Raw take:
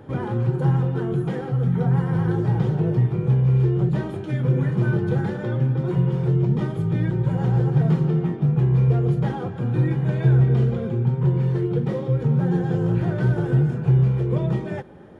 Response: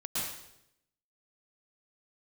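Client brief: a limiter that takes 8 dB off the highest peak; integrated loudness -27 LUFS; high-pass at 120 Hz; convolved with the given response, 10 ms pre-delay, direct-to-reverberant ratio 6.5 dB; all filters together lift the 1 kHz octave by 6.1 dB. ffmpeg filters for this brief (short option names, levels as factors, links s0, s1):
-filter_complex "[0:a]highpass=120,equalizer=f=1000:t=o:g=8,alimiter=limit=0.141:level=0:latency=1,asplit=2[s0][s1];[1:a]atrim=start_sample=2205,adelay=10[s2];[s1][s2]afir=irnorm=-1:irlink=0,volume=0.266[s3];[s0][s3]amix=inputs=2:normalize=0,volume=0.708"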